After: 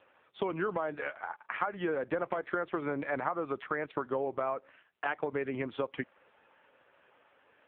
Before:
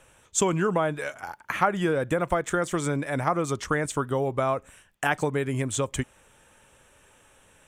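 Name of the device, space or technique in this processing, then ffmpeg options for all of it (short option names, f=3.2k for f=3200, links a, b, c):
voicemail: -af "highpass=310,lowpass=2.6k,acompressor=threshold=-27dB:ratio=12" -ar 8000 -c:a libopencore_amrnb -b:a 5900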